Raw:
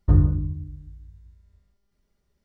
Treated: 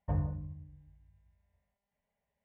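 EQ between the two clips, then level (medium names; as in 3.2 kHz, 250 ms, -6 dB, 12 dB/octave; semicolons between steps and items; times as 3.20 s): band-pass filter 840 Hz, Q 0.57; static phaser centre 1.3 kHz, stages 6; 0.0 dB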